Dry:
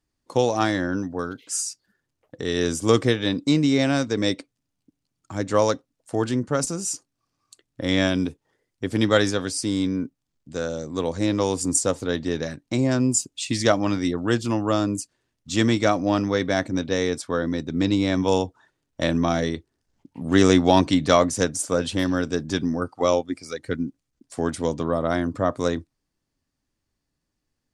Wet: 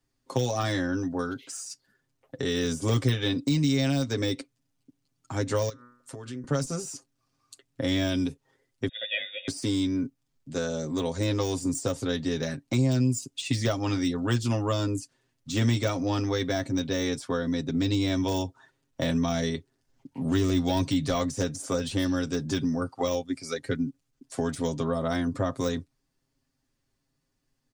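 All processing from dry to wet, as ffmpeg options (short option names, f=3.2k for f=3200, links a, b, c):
-filter_complex "[0:a]asettb=1/sr,asplit=3[a][b][c];[a]atrim=end=5.694[d];[b]atrim=start=5.69:end=6.44,asetpts=PTS-STARTPTS,afade=t=in:d=0.004:c=qsin,afade=t=out:st=0.746:d=0.004:c=qsin,equalizer=f=740:t=o:w=0.48:g=-10.5,bandreject=f=122:t=h:w=4,bandreject=f=244:t=h:w=4,bandreject=f=366:t=h:w=4,bandreject=f=488:t=h:w=4,bandreject=f=610:t=h:w=4,bandreject=f=732:t=h:w=4,bandreject=f=854:t=h:w=4,bandreject=f=976:t=h:w=4,bandreject=f=1.098k:t=h:w=4,bandreject=f=1.22k:t=h:w=4,bandreject=f=1.342k:t=h:w=4,bandreject=f=1.464k:t=h:w=4,bandreject=f=1.586k:t=h:w=4,bandreject=f=1.708k:t=h:w=4,bandreject=f=1.83k:t=h:w=4,bandreject=f=1.952k:t=h:w=4,bandreject=f=2.074k:t=h:w=4,bandreject=f=2.196k:t=h:w=4,bandreject=f=2.318k:t=h:w=4,acompressor=threshold=-38dB:ratio=6:attack=3.2:release=140:knee=1:detection=peak[e];[c]atrim=start=6.436[f];[d][e]acrossfade=d=0.004:c1=hsin:c2=qsin[g];[g][f]acrossfade=d=0.004:c1=qsin:c2=hsin,asettb=1/sr,asplit=3[h][i][j];[h]atrim=end=8.884[k];[i]atrim=start=8.88:end=9.48,asetpts=PTS-STARTPTS,afade=t=in:d=0.004:c=qsin,afade=t=out:st=0.596:d=0.004:c=qsin,aecho=1:1:2.2:0.5,atrim=end_sample=26460,lowpass=f=3.2k:t=q:w=0.5098,lowpass=f=3.2k:t=q:w=0.6013,lowpass=f=3.2k:t=q:w=0.9,lowpass=f=3.2k:t=q:w=2.563,afreqshift=-3800,asplit=3[l][m][n];[l]bandpass=f=530:t=q:w=8,volume=0dB[o];[m]bandpass=f=1.84k:t=q:w=8,volume=-6dB[p];[n]bandpass=f=2.48k:t=q:w=8,volume=-9dB[q];[o][p][q]amix=inputs=3:normalize=0[r];[j]atrim=start=9.476[s];[k][r]acrossfade=d=0.004:c1=hsin:c2=qsin[t];[t][s]acrossfade=d=0.004:c1=qsin:c2=hsin,deesser=0.75,aecho=1:1:7.5:0.71,acrossover=split=140|3000[u][v][w];[v]acompressor=threshold=-27dB:ratio=4[x];[u][x][w]amix=inputs=3:normalize=0"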